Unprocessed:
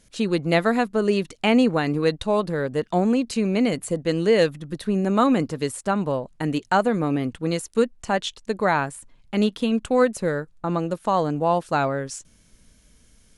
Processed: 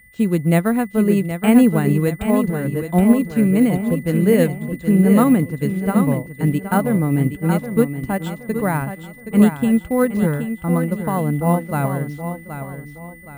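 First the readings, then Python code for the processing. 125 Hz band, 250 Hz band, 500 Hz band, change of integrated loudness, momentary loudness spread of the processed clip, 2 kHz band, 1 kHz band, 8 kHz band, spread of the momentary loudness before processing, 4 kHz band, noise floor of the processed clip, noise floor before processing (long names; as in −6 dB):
+10.0 dB, +7.5 dB, +0.5 dB, +5.0 dB, 11 LU, 0.0 dB, −1.0 dB, +3.0 dB, 8 LU, can't be measured, −40 dBFS, −57 dBFS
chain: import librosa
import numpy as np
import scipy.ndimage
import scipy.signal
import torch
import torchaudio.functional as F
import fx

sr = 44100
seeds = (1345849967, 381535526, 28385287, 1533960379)

p1 = scipy.signal.sosfilt(scipy.signal.butter(2, 53.0, 'highpass', fs=sr, output='sos'), x)
p2 = fx.low_shelf(p1, sr, hz=85.0, db=7.0)
p3 = fx.quant_float(p2, sr, bits=2)
p4 = p2 + F.gain(torch.from_numpy(p3), -9.0).numpy()
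p5 = fx.bass_treble(p4, sr, bass_db=12, treble_db=-14)
p6 = p5 + 10.0 ** (-37.0 / 20.0) * np.sin(2.0 * np.pi * 2000.0 * np.arange(len(p5)) / sr)
p7 = p6 + fx.echo_feedback(p6, sr, ms=772, feedback_pct=46, wet_db=-6.5, dry=0)
p8 = np.repeat(p7[::4], 4)[:len(p7)]
p9 = fx.upward_expand(p8, sr, threshold_db=-23.0, expansion=1.5)
y = F.gain(torch.from_numpy(p9), -1.5).numpy()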